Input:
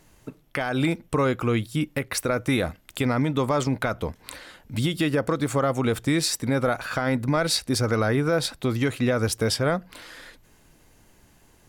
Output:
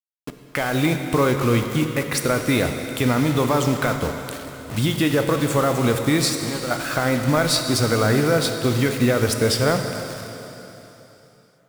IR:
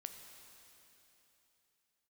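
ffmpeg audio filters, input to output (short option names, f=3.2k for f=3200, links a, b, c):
-filter_complex "[0:a]asettb=1/sr,asplit=3[a][b][c];[a]atrim=end=6.294[d];[b]atrim=start=6.29:end=6.71,asetpts=PTS-STARTPTS,afade=t=in:d=0.004:c=qsin,afade=t=out:st=0.416:d=0.004:c=qsin,acompressor=threshold=-30dB:ratio=6[e];[c]atrim=start=6.706[f];[d][e]acrossfade=d=0.004:c1=hsin:c2=qsin[g];[g][f]acrossfade=d=0.004:c1=qsin:c2=hsin,acrusher=bits=5:mix=0:aa=0.000001[h];[1:a]atrim=start_sample=2205,asetrate=43659,aresample=44100[i];[h][i]afir=irnorm=-1:irlink=0,volume=8.5dB"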